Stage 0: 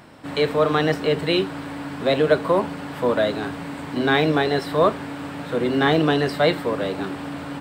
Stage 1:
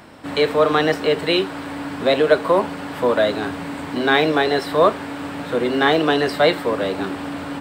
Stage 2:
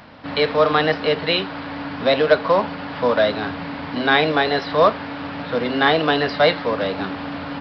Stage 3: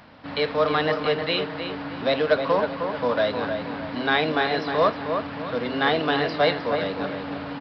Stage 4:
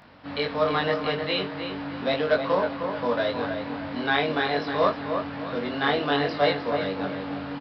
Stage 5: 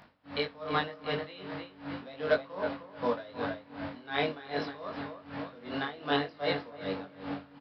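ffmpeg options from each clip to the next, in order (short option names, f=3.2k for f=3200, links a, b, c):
-filter_complex "[0:a]equalizer=f=140:t=o:w=0.4:g=-6,acrossover=split=350[a][b];[a]alimiter=limit=-23.5dB:level=0:latency=1:release=433[c];[c][b]amix=inputs=2:normalize=0,volume=3.5dB"
-af "equalizer=f=360:t=o:w=0.36:g=-11,aresample=11025,acrusher=bits=6:mode=log:mix=0:aa=0.000001,aresample=44100,volume=1dB"
-filter_complex "[0:a]asplit=2[a][b];[b]adelay=311,lowpass=f=2.6k:p=1,volume=-6dB,asplit=2[c][d];[d]adelay=311,lowpass=f=2.6k:p=1,volume=0.4,asplit=2[e][f];[f]adelay=311,lowpass=f=2.6k:p=1,volume=0.4,asplit=2[g][h];[h]adelay=311,lowpass=f=2.6k:p=1,volume=0.4,asplit=2[i][j];[j]adelay=311,lowpass=f=2.6k:p=1,volume=0.4[k];[a][c][e][g][i][k]amix=inputs=6:normalize=0,volume=-5.5dB"
-filter_complex "[0:a]asplit=2[a][b];[b]adelay=21,volume=-2.5dB[c];[a][c]amix=inputs=2:normalize=0,volume=-4dB"
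-af "aeval=exprs='val(0)*pow(10,-20*(0.5-0.5*cos(2*PI*2.6*n/s))/20)':c=same,volume=-3dB"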